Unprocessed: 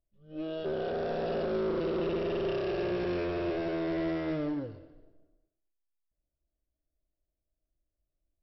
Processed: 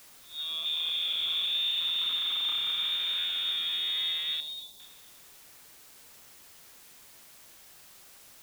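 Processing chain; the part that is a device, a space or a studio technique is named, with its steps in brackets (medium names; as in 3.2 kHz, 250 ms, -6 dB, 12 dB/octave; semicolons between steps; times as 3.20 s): scrambled radio voice (band-pass 340–2800 Hz; frequency inversion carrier 4 kHz; white noise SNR 20 dB); 4.40–4.80 s: high-order bell 2 kHz -13.5 dB; trim +3 dB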